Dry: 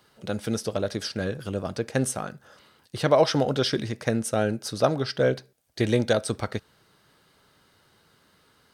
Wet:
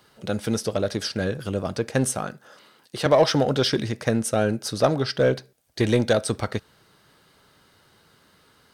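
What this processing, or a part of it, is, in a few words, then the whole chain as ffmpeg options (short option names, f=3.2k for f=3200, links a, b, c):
parallel distortion: -filter_complex "[0:a]asplit=2[a][b];[b]asoftclip=type=hard:threshold=-21dB,volume=-6.5dB[c];[a][c]amix=inputs=2:normalize=0,asettb=1/sr,asplit=3[d][e][f];[d]atrim=end=2.324[g];[e]atrim=start=2.32:end=3.06,asetpts=PTS-STARTPTS,afade=t=in:d=0.004:c=qsin,afade=t=out:st=0.736:d=0.004:c=qsin,highpass=190[h];[f]atrim=start=3.056[i];[g][h]acrossfade=d=0.004:c1=hsin:c2=qsin[j];[j][i]acrossfade=d=0.004:c1=qsin:c2=hsin"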